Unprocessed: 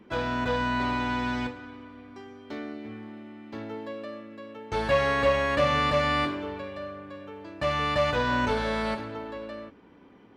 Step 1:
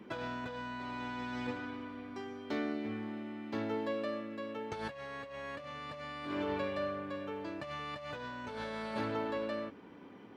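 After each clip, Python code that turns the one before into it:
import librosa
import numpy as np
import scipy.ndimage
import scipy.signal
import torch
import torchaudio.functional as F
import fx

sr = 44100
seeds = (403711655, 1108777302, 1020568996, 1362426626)

y = scipy.signal.sosfilt(scipy.signal.butter(2, 100.0, 'highpass', fs=sr, output='sos'), x)
y = fx.over_compress(y, sr, threshold_db=-35.0, ratio=-1.0)
y = F.gain(torch.from_numpy(y), -4.5).numpy()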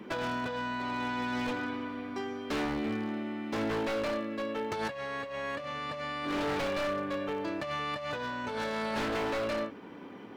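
y = fx.low_shelf(x, sr, hz=93.0, db=-8.0)
y = 10.0 ** (-34.0 / 20.0) * (np.abs((y / 10.0 ** (-34.0 / 20.0) + 3.0) % 4.0 - 2.0) - 1.0)
y = fx.end_taper(y, sr, db_per_s=170.0)
y = F.gain(torch.from_numpy(y), 7.5).numpy()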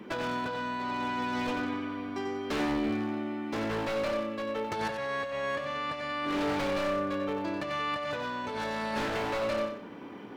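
y = fx.rider(x, sr, range_db=3, speed_s=2.0)
y = fx.echo_feedback(y, sr, ms=92, feedback_pct=28, wet_db=-7.5)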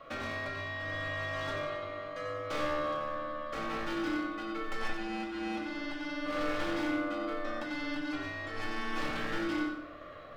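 y = x * np.sin(2.0 * np.pi * 890.0 * np.arange(len(x)) / sr)
y = fx.room_shoebox(y, sr, seeds[0], volume_m3=650.0, walls='furnished', distance_m=2.3)
y = F.gain(torch.from_numpy(y), -4.5).numpy()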